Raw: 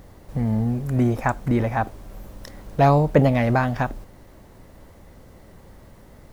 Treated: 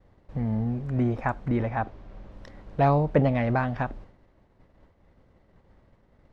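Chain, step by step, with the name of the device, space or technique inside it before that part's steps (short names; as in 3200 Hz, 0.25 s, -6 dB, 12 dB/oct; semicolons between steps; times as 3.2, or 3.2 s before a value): hearing-loss simulation (LPF 3400 Hz 12 dB/oct; expander -39 dBFS); 1.69–2.32 LPF 6400 Hz 12 dB/oct; gain -5 dB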